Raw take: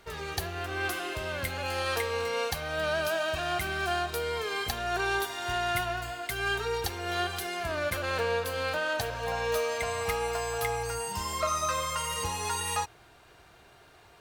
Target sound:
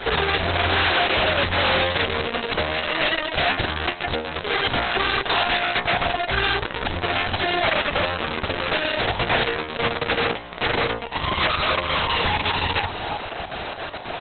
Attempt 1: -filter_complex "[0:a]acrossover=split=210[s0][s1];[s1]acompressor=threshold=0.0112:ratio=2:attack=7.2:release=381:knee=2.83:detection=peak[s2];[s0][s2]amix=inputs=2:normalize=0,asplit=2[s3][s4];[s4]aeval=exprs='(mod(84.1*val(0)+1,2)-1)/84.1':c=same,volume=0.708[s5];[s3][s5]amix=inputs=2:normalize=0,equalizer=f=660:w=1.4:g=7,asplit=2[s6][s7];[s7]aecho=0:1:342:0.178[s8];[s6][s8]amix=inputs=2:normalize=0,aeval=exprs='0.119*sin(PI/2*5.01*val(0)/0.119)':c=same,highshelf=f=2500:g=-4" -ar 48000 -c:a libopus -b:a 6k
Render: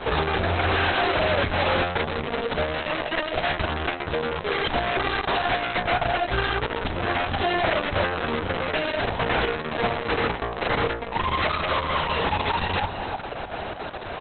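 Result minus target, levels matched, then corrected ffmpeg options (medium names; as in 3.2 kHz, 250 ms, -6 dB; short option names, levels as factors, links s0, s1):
4 kHz band -3.5 dB
-filter_complex "[0:a]acrossover=split=210[s0][s1];[s1]acompressor=threshold=0.0112:ratio=2:attack=7.2:release=381:knee=2.83:detection=peak[s2];[s0][s2]amix=inputs=2:normalize=0,asplit=2[s3][s4];[s4]aeval=exprs='(mod(84.1*val(0)+1,2)-1)/84.1':c=same,volume=0.708[s5];[s3][s5]amix=inputs=2:normalize=0,equalizer=f=660:w=1.4:g=7,asplit=2[s6][s7];[s7]aecho=0:1:342:0.178[s8];[s6][s8]amix=inputs=2:normalize=0,aeval=exprs='0.119*sin(PI/2*5.01*val(0)/0.119)':c=same,highshelf=f=2500:g=6.5" -ar 48000 -c:a libopus -b:a 6k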